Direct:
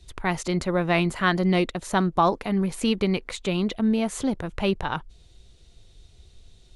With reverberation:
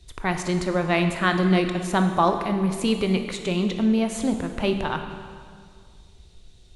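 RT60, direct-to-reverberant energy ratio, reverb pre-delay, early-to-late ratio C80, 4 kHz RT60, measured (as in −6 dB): 2.1 s, 6.0 dB, 19 ms, 8.5 dB, 1.7 s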